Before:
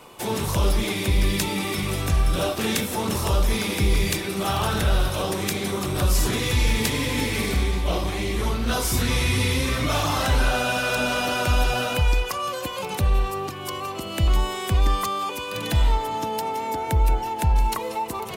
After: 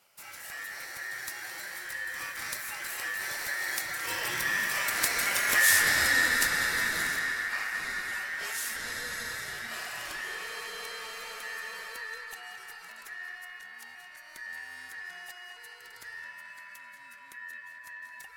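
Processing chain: Doppler pass-by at 5.56, 29 m/s, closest 15 m; high shelf 3500 Hz +11.5 dB; notch 4900 Hz, Q 14; in parallel at -3 dB: compressor, threshold -33 dBFS, peak gain reduction 18 dB; on the sum: ring modulator 1800 Hz; on a send: narrowing echo 0.216 s, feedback 82%, band-pass 1600 Hz, level -5 dB; on the sum: gain -3 dB

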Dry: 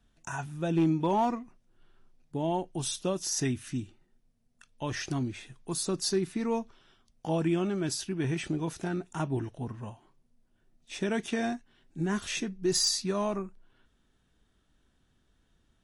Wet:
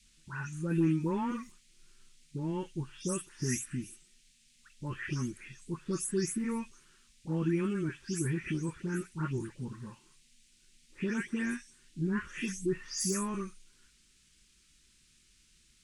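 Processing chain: spectral delay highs late, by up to 0.258 s; fixed phaser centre 1700 Hz, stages 4; band noise 2100–9400 Hz -67 dBFS

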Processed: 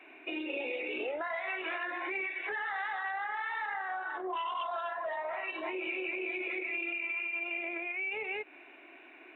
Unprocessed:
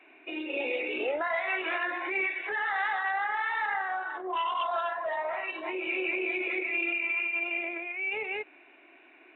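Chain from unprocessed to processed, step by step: compressor 4:1, threshold -37 dBFS, peak gain reduction 9.5 dB; gain +2.5 dB

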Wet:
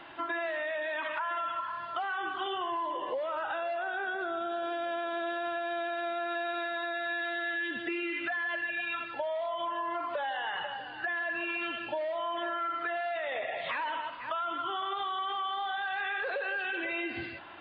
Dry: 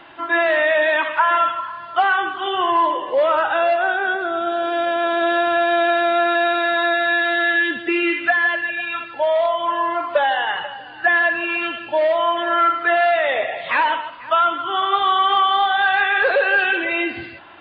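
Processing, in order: limiter -16 dBFS, peak gain reduction 9.5 dB; compressor 6:1, threshold -26 dBFS, peak gain reduction 7 dB; gain -5 dB

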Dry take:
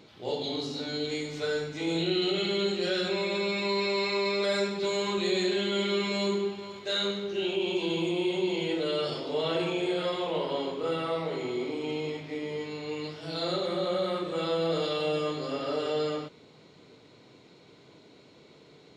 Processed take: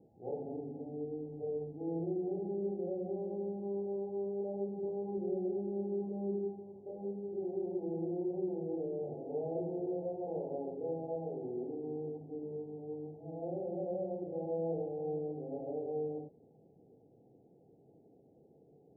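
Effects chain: Chebyshev low-pass 830 Hz, order 8; notch 610 Hz, Q 12; gain -6.5 dB

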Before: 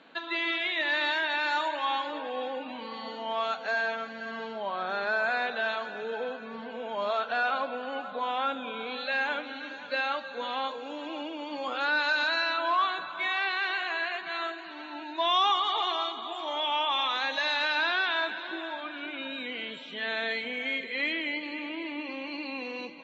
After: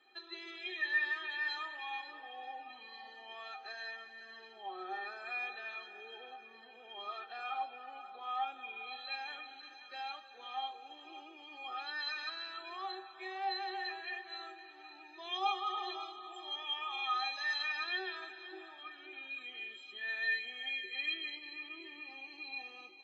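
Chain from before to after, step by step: low shelf 290 Hz -9 dB; metallic resonator 370 Hz, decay 0.26 s, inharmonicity 0.03; gain +6.5 dB

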